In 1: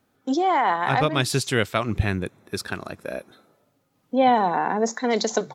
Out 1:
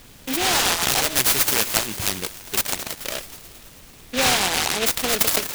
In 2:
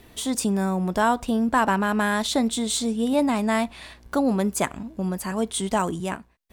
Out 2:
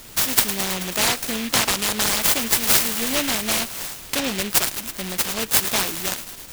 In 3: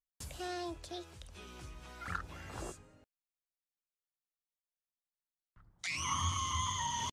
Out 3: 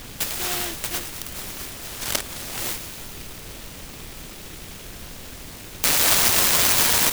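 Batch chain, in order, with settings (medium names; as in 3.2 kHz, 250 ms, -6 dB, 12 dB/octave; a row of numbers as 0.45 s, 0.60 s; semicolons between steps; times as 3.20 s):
tilt EQ +4.5 dB/octave; compression 1.5:1, threshold -25 dBFS; added noise pink -50 dBFS; on a send: feedback echo behind a high-pass 108 ms, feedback 77%, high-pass 3.5 kHz, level -10 dB; on the sum: delay time shaken by noise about 2.5 kHz, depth 0.27 ms; normalise loudness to -20 LUFS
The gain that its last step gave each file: +4.0 dB, +4.0 dB, +12.0 dB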